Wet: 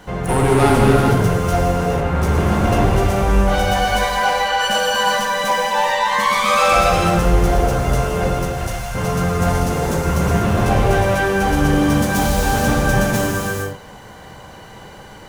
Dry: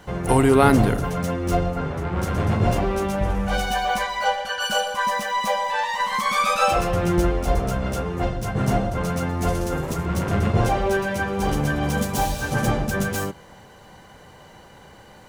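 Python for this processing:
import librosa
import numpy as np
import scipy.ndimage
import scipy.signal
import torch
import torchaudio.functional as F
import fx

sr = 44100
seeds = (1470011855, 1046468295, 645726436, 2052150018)

y = fx.tone_stack(x, sr, knobs='10-0-10', at=(8.37, 8.95))
y = 10.0 ** (-16.5 / 20.0) * np.tanh(y / 10.0 ** (-16.5 / 20.0))
y = fx.rev_gated(y, sr, seeds[0], gate_ms=480, shape='flat', drr_db=-3.0)
y = F.gain(torch.from_numpy(y), 3.5).numpy()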